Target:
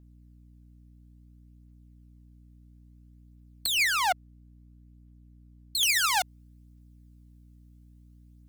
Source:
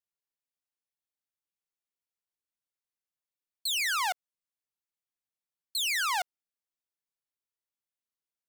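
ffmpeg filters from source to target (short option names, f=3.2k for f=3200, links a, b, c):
-af "asetnsamples=n=441:p=0,asendcmd='3.66 highshelf g -3;5.83 highshelf g 7',highshelf=f=2.8k:g=2,acompressor=threshold=-28dB:ratio=3,aphaser=in_gain=1:out_gain=1:delay=1.7:decay=0.34:speed=0.59:type=triangular,aeval=exprs='val(0)+0.00126*(sin(2*PI*60*n/s)+sin(2*PI*2*60*n/s)/2+sin(2*PI*3*60*n/s)/3+sin(2*PI*4*60*n/s)/4+sin(2*PI*5*60*n/s)/5)':c=same,volume=5.5dB"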